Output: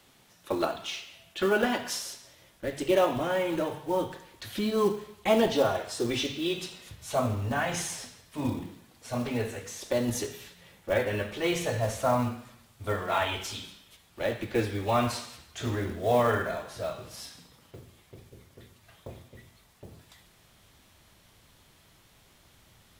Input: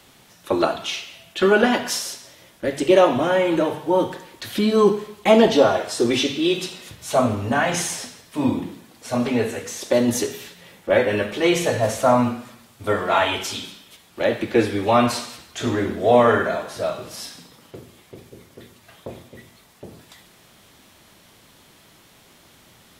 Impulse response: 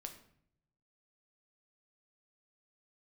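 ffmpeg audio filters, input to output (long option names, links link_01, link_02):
-af "acrusher=bits=6:mode=log:mix=0:aa=0.000001,asubboost=boost=3:cutoff=120,volume=-8.5dB"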